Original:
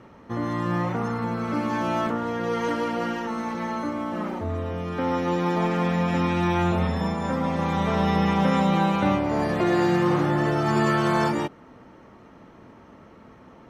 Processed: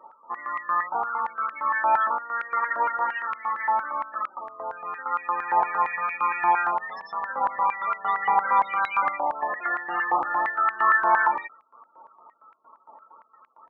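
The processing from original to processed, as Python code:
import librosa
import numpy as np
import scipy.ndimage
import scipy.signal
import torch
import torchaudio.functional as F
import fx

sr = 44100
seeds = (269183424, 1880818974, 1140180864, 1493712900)

y = fx.spec_topn(x, sr, count=32)
y = fx.filter_held_highpass(y, sr, hz=8.7, low_hz=860.0, high_hz=2300.0)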